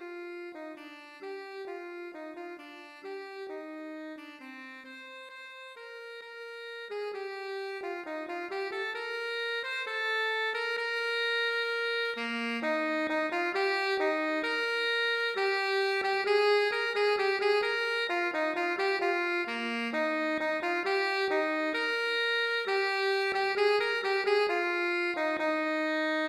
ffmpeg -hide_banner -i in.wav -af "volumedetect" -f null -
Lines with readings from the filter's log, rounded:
mean_volume: -31.3 dB
max_volume: -15.4 dB